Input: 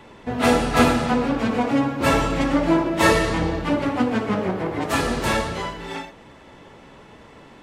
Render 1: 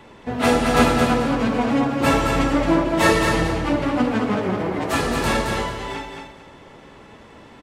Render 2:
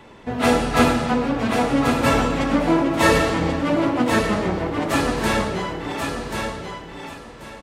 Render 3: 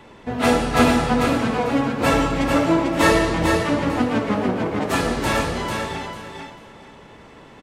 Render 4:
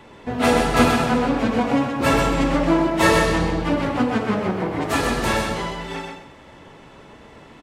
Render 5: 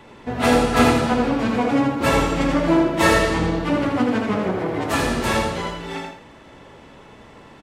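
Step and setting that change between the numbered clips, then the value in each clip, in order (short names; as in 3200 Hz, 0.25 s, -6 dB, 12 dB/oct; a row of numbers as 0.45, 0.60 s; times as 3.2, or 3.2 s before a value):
feedback echo, time: 219, 1085, 445, 128, 82 ms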